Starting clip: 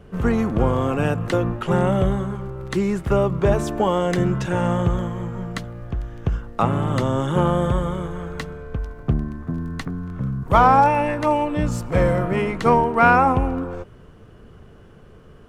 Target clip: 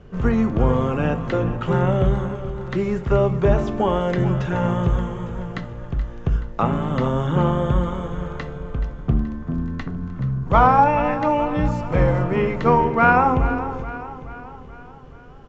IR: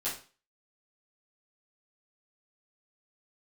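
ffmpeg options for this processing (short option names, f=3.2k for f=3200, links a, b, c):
-filter_complex "[0:a]acrossover=split=3600[a][b];[b]acompressor=threshold=-49dB:ratio=4:attack=1:release=60[c];[a][c]amix=inputs=2:normalize=0,aecho=1:1:427|854|1281|1708|2135:0.224|0.116|0.0605|0.0315|0.0164,asplit=2[d][e];[1:a]atrim=start_sample=2205,lowshelf=f=240:g=11[f];[e][f]afir=irnorm=-1:irlink=0,volume=-14dB[g];[d][g]amix=inputs=2:normalize=0,aresample=16000,aresample=44100,volume=-2dB"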